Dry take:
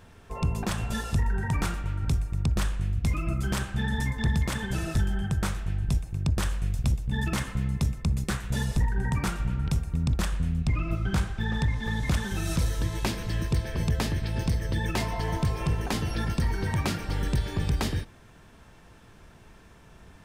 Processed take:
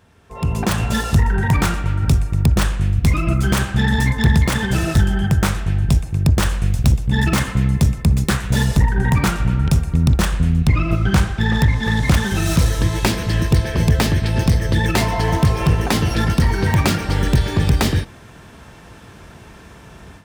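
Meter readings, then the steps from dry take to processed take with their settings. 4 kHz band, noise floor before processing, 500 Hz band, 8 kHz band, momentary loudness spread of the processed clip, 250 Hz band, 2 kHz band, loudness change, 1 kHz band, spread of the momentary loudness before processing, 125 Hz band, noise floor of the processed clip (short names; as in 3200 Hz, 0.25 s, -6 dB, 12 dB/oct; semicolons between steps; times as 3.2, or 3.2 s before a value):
+11.0 dB, -53 dBFS, +11.5 dB, +10.5 dB, 3 LU, +12.0 dB, +11.5 dB, +11.0 dB, +11.5 dB, 3 LU, +11.0 dB, -42 dBFS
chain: self-modulated delay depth 0.086 ms; AGC gain up to 14 dB; HPF 50 Hz; gain -1.5 dB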